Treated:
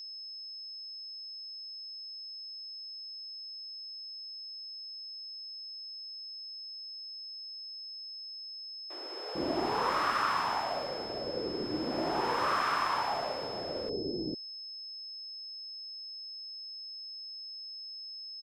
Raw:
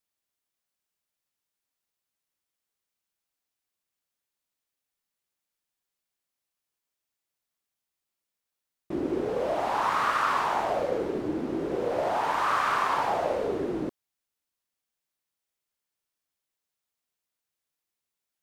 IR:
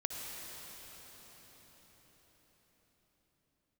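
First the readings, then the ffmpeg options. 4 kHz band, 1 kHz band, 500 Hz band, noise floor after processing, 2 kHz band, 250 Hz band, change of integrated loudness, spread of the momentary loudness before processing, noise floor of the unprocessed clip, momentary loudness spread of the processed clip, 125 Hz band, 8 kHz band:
+9.0 dB, -5.0 dB, -6.5 dB, -44 dBFS, -4.0 dB, -5.0 dB, -8.5 dB, 6 LU, under -85 dBFS, 11 LU, -4.0 dB, -4.0 dB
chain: -filter_complex "[0:a]aeval=exprs='val(0)+0.0141*sin(2*PI*5200*n/s)':c=same,acrossover=split=550[a][b];[a]adelay=450[c];[c][b]amix=inputs=2:normalize=0,volume=-4dB"

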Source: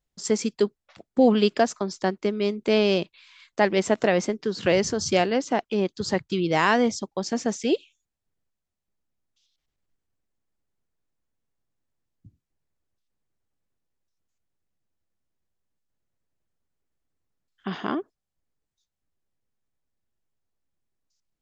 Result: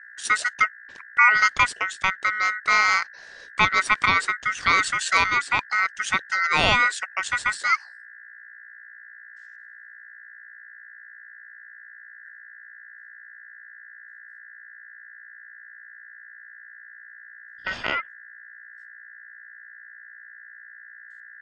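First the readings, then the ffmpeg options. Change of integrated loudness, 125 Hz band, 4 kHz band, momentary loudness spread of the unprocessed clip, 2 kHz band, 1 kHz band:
+3.0 dB, -6.0 dB, +3.5 dB, 10 LU, +12.5 dB, +6.0 dB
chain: -af "aeval=exprs='val(0)+0.00562*(sin(2*PI*60*n/s)+sin(2*PI*2*60*n/s)/2+sin(2*PI*3*60*n/s)/3+sin(2*PI*4*60*n/s)/4+sin(2*PI*5*60*n/s)/5)':c=same,aeval=exprs='val(0)*sin(2*PI*1700*n/s)':c=same,volume=4dB"

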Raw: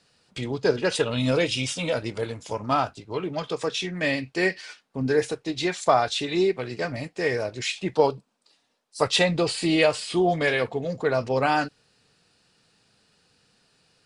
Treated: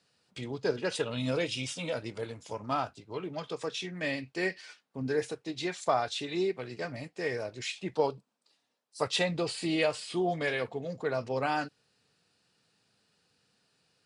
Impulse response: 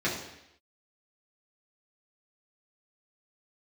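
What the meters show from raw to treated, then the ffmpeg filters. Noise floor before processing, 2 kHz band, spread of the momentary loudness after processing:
-70 dBFS, -8.0 dB, 10 LU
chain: -af "highpass=74,volume=-8dB"

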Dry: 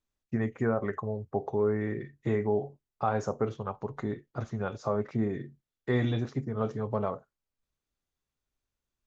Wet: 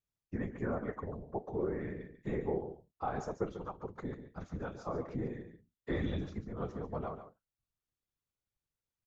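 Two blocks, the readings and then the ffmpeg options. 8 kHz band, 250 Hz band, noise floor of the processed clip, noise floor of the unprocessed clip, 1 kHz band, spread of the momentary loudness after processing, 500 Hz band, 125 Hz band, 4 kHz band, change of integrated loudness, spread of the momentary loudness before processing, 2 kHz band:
n/a, -7.0 dB, under -85 dBFS, under -85 dBFS, -7.0 dB, 9 LU, -8.0 dB, -8.5 dB, -7.5 dB, -8.0 dB, 9 LU, -7.5 dB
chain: -af "afftfilt=real='hypot(re,im)*cos(2*PI*random(0))':imag='hypot(re,im)*sin(2*PI*random(1))':win_size=512:overlap=0.75,aecho=1:1:142:0.282,volume=-2dB"

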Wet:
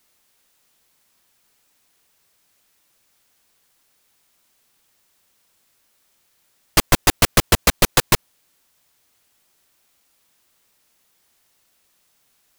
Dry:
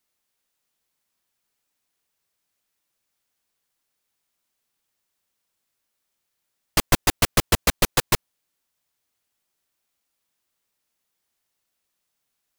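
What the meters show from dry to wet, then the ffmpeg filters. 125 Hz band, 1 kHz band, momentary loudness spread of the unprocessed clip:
+4.0 dB, +4.5 dB, 5 LU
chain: -af "alimiter=level_in=15dB:limit=-1dB:release=50:level=0:latency=1,volume=-1dB"

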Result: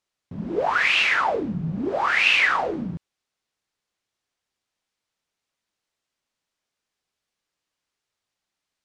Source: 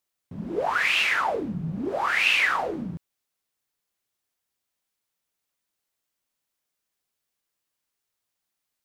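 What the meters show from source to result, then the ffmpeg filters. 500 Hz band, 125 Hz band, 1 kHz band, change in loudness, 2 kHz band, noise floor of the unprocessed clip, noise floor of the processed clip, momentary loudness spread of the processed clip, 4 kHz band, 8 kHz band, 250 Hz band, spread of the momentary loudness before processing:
+3.0 dB, +3.0 dB, +3.0 dB, +3.0 dB, +3.0 dB, -83 dBFS, -85 dBFS, 15 LU, +3.0 dB, -1.0 dB, +3.0 dB, 15 LU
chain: -af "lowpass=6.4k,volume=3dB"

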